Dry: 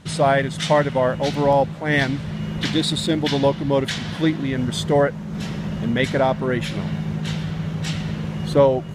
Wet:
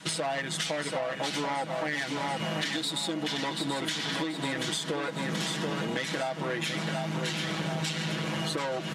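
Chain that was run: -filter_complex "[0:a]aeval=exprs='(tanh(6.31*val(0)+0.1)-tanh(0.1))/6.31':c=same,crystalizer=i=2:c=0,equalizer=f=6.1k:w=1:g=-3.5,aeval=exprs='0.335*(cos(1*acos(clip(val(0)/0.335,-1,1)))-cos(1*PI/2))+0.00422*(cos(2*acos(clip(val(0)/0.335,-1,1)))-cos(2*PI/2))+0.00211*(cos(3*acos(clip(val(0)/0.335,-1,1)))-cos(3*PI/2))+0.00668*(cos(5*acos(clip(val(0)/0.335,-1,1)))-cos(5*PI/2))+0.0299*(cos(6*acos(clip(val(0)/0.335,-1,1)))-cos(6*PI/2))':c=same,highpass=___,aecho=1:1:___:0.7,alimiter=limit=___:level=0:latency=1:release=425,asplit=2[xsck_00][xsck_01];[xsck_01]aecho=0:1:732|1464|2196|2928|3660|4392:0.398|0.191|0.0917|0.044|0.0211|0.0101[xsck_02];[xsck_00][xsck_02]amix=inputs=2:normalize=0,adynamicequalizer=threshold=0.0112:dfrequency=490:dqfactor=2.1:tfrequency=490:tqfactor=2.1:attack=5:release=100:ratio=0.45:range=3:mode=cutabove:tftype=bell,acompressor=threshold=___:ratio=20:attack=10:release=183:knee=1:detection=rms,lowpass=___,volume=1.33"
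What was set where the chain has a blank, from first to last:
310, 6.2, 0.251, 0.0355, 8.5k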